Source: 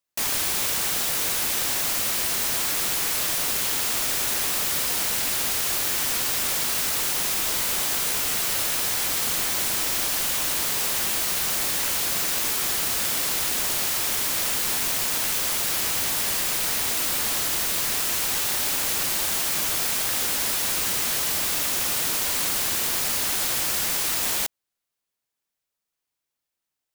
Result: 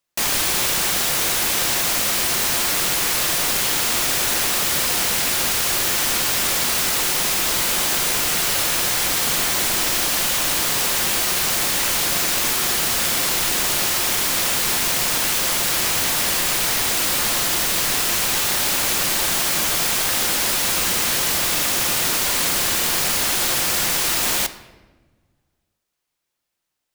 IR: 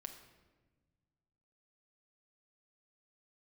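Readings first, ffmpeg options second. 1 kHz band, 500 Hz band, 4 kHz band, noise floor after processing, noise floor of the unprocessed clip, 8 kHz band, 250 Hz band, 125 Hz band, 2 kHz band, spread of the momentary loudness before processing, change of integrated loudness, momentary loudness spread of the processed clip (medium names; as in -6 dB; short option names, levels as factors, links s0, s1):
+7.0 dB, +7.0 dB, +6.0 dB, -78 dBFS, -84 dBFS, +4.5 dB, +7.0 dB, +7.0 dB, +6.5 dB, 0 LU, +4.5 dB, 0 LU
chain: -filter_complex "[0:a]asplit=2[s0][s1];[1:a]atrim=start_sample=2205,highshelf=f=10000:g=-9.5[s2];[s1][s2]afir=irnorm=-1:irlink=0,volume=2.11[s3];[s0][s3]amix=inputs=2:normalize=0"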